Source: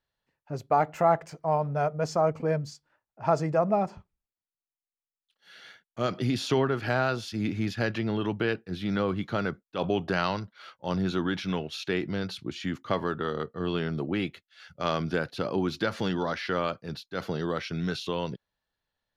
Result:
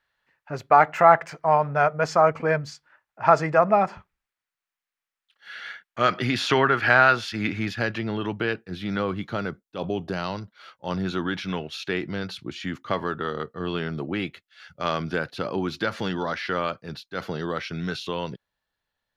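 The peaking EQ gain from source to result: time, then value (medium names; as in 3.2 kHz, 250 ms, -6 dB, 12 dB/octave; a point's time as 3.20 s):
peaking EQ 1.7 kHz 2.2 oct
7.45 s +14.5 dB
7.88 s +4 dB
9.09 s +4 dB
10.05 s -6.5 dB
10.93 s +4 dB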